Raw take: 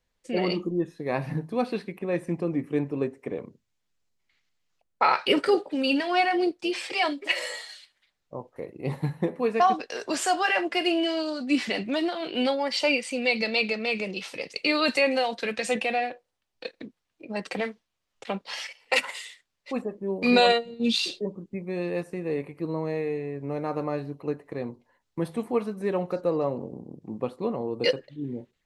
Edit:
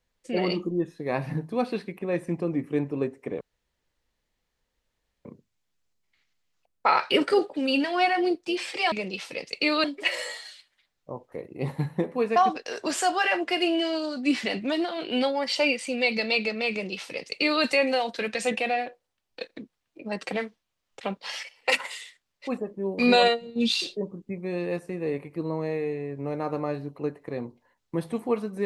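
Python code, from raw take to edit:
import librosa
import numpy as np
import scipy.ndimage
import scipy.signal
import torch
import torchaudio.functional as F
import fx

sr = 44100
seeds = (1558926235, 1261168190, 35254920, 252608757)

y = fx.edit(x, sr, fx.insert_room_tone(at_s=3.41, length_s=1.84),
    fx.duplicate(start_s=13.95, length_s=0.92, to_s=7.08), tone=tone)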